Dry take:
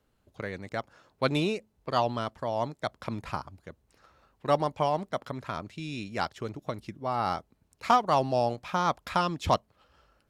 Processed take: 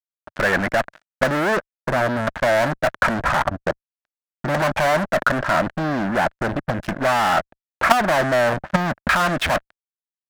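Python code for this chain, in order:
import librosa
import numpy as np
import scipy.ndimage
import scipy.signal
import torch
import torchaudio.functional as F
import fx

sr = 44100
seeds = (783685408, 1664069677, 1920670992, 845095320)

y = fx.filter_lfo_lowpass(x, sr, shape='saw_down', hz=0.44, low_hz=270.0, high_hz=4300.0, q=0.74)
y = fx.fuzz(y, sr, gain_db=45.0, gate_db=-53.0)
y = fx.transient(y, sr, attack_db=5, sustain_db=-4)
y = fx.leveller(y, sr, passes=1)
y = fx.peak_eq(y, sr, hz=450.0, db=-6.5, octaves=0.41)
y = fx.level_steps(y, sr, step_db=10)
y = fx.graphic_eq_15(y, sr, hz=(100, 630, 1600), db=(-7, 8, 12))
y = F.gain(torch.from_numpy(y), -3.0).numpy()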